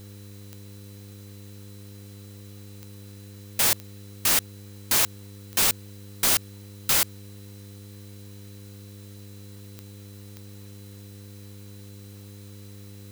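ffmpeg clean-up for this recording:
ffmpeg -i in.wav -af "adeclick=threshold=4,bandreject=frequency=100.9:width_type=h:width=4,bandreject=frequency=201.8:width_type=h:width=4,bandreject=frequency=302.7:width_type=h:width=4,bandreject=frequency=403.6:width_type=h:width=4,bandreject=frequency=504.5:width_type=h:width=4,bandreject=frequency=4000:width=30,afwtdn=0.002" out.wav

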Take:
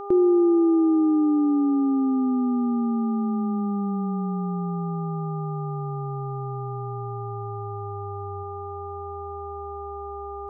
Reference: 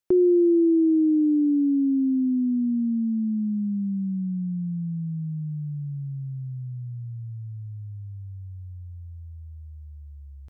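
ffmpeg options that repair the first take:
ffmpeg -i in.wav -af "bandreject=frequency=402.7:width_type=h:width=4,bandreject=frequency=805.4:width_type=h:width=4,bandreject=frequency=1208.1:width_type=h:width=4,asetnsamples=nb_out_samples=441:pad=0,asendcmd='8.43 volume volume 3.5dB',volume=0dB" out.wav

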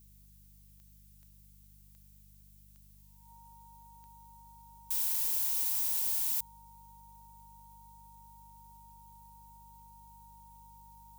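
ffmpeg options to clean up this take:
ffmpeg -i in.wav -af "adeclick=threshold=4,bandreject=frequency=49.9:width_type=h:width=4,bandreject=frequency=99.8:width_type=h:width=4,bandreject=frequency=149.7:width_type=h:width=4,bandreject=frequency=199.6:width_type=h:width=4,bandreject=frequency=930:width=30,afftdn=noise_reduction=23:noise_floor=-59" out.wav

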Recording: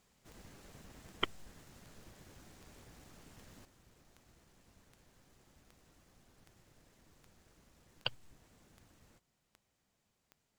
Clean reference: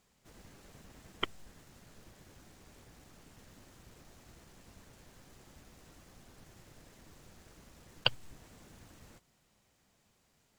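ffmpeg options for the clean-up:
ffmpeg -i in.wav -af "adeclick=threshold=4,asetnsamples=nb_out_samples=441:pad=0,asendcmd='3.65 volume volume 8.5dB',volume=0dB" out.wav

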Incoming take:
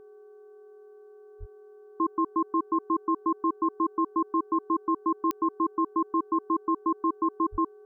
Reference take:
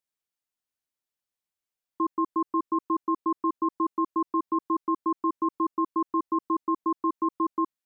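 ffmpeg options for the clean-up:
ffmpeg -i in.wav -filter_complex "[0:a]adeclick=threshold=4,bandreject=frequency=381.2:width_type=h:width=4,bandreject=frequency=762.4:width_type=h:width=4,bandreject=frequency=1143.6:width_type=h:width=4,bandreject=frequency=1524.8:width_type=h:width=4,bandreject=frequency=420:width=30,asplit=3[link_01][link_02][link_03];[link_01]afade=type=out:start_time=1.39:duration=0.02[link_04];[link_02]highpass=frequency=140:width=0.5412,highpass=frequency=140:width=1.3066,afade=type=in:start_time=1.39:duration=0.02,afade=type=out:start_time=1.51:duration=0.02[link_05];[link_03]afade=type=in:start_time=1.51:duration=0.02[link_06];[link_04][link_05][link_06]amix=inputs=3:normalize=0,asplit=3[link_07][link_08][link_09];[link_07]afade=type=out:start_time=7.51:duration=0.02[link_10];[link_08]highpass=frequency=140:width=0.5412,highpass=frequency=140:width=1.3066,afade=type=in:start_time=7.51:duration=0.02,afade=type=out:start_time=7.63:duration=0.02[link_11];[link_09]afade=type=in:start_time=7.63:duration=0.02[link_12];[link_10][link_11][link_12]amix=inputs=3:normalize=0" out.wav

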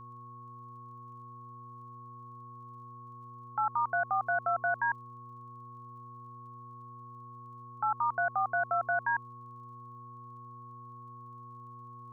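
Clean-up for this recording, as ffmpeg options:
ffmpeg -i in.wav -af "adeclick=threshold=4,bandreject=frequency=120:width_type=h:width=4,bandreject=frequency=240:width_type=h:width=4,bandreject=frequency=360:width_type=h:width=4,bandreject=frequency=480:width_type=h:width=4,bandreject=frequency=1100:width=30" out.wav

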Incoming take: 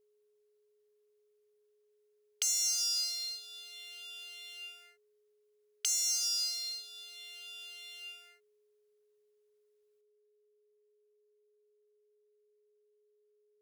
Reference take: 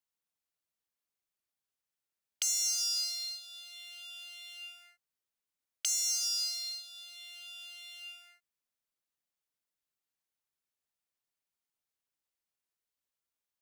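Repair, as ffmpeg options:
ffmpeg -i in.wav -af "bandreject=frequency=420:width=30,asetnsamples=nb_out_samples=441:pad=0,asendcmd='10.01 volume volume 12dB',volume=0dB" out.wav

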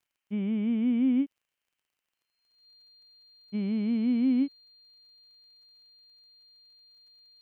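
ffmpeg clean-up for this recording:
ffmpeg -i in.wav -af "adeclick=threshold=4,bandreject=frequency=4200:width=30,agate=range=-21dB:threshold=-77dB" out.wav

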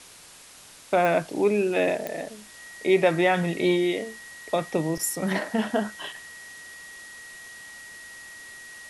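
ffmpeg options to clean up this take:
ffmpeg -i in.wav -af "adeclick=threshold=4,bandreject=frequency=1900:width=30,afwtdn=0.005" out.wav

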